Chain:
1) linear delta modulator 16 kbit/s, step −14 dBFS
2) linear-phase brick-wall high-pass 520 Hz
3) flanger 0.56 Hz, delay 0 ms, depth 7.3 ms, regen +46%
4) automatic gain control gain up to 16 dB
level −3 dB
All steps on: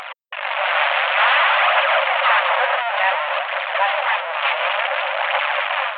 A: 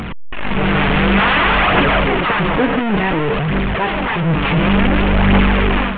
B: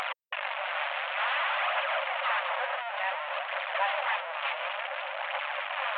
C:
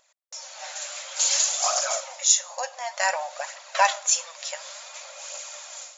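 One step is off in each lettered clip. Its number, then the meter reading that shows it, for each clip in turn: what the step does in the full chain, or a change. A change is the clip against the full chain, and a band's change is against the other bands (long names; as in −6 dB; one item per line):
2, 500 Hz band +4.5 dB
4, change in momentary loudness spread −1 LU
1, 4 kHz band +4.5 dB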